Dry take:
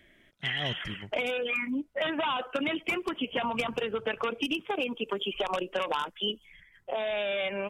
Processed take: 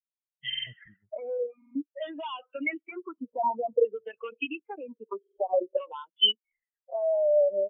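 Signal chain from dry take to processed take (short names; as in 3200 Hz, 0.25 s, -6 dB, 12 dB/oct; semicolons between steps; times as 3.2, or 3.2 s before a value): LFO low-pass saw down 0.52 Hz 520–5400 Hz; stuck buffer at 0.48/1.57/5.19, samples 2048, times 3; spectral expander 2.5:1; gain +1.5 dB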